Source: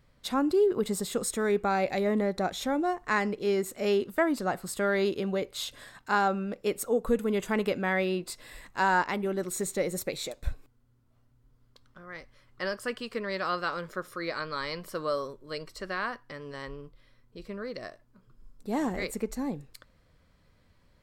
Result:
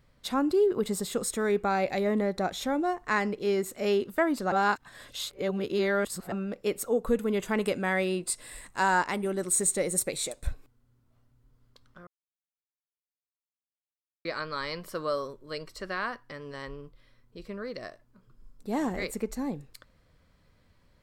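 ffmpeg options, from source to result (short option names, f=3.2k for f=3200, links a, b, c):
-filter_complex "[0:a]asettb=1/sr,asplit=3[a][b][c];[a]atrim=end=7.614[d];[b]atrim=start=7.61:end=10.47,asetpts=PTS-STARTPTS,afade=t=in:d=0.004:c=qsin,afade=t=out:st=2.856:d=0.004:c=qsin,equalizer=f=8.8k:t=o:w=0.5:g=14[e];[c]atrim=start=10.466[f];[d][e]acrossfade=d=0.004:c1=hsin:c2=qsin[g];[g][f]acrossfade=d=0.004:c1=qsin:c2=hsin,asplit=5[h][i][j][k][l];[h]atrim=end=4.522[m];[i]atrim=start=4.518:end=6.322,asetpts=PTS-STARTPTS,areverse[n];[j]atrim=start=6.318:end=12.07,asetpts=PTS-STARTPTS,afade=t=out:st=5.748:d=0.004:c=hsin[o];[k]atrim=start=12.07:end=14.25,asetpts=PTS-STARTPTS,volume=0[p];[l]atrim=start=14.25,asetpts=PTS-STARTPTS,afade=t=in:d=0.004:c=hsin[q];[m][n]acrossfade=d=0.004:c1=hsin:c2=hsin[r];[o][p][q]concat=n=3:v=0:a=1[s];[r][s]acrossfade=d=0.004:c1=hsin:c2=hsin"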